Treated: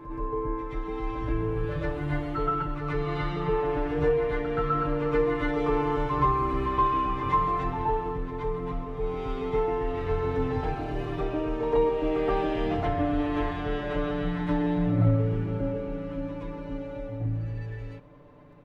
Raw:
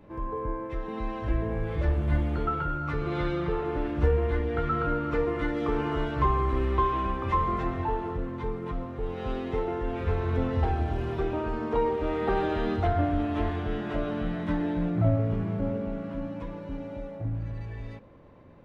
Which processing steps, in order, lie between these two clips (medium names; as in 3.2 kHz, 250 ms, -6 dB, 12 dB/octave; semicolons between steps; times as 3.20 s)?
comb 6.8 ms, depth 93%; on a send: reverse echo 125 ms -7.5 dB; on the sum: trim -2.5 dB